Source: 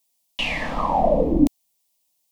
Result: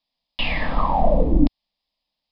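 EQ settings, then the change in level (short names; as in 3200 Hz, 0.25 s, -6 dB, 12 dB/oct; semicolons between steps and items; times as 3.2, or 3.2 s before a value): dynamic EQ 410 Hz, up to -4 dB, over -27 dBFS, Q 0.82; rippled Chebyshev low-pass 5100 Hz, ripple 3 dB; low shelf 120 Hz +11 dB; +2.0 dB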